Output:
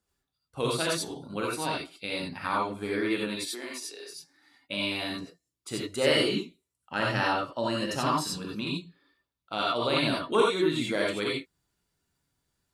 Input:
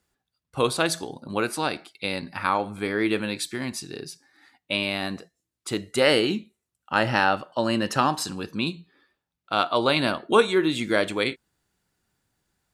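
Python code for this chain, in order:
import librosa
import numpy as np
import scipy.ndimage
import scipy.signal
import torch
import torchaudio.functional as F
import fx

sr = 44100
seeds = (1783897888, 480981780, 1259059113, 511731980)

y = fx.highpass(x, sr, hz=fx.line((3.35, 240.0), (4.09, 510.0)), slope=24, at=(3.35, 4.09), fade=0.02)
y = fx.filter_lfo_notch(y, sr, shape='saw_down', hz=5.7, low_hz=670.0, high_hz=2500.0, q=2.8)
y = fx.rev_gated(y, sr, seeds[0], gate_ms=110, shape='rising', drr_db=-3.0)
y = F.gain(torch.from_numpy(y), -8.0).numpy()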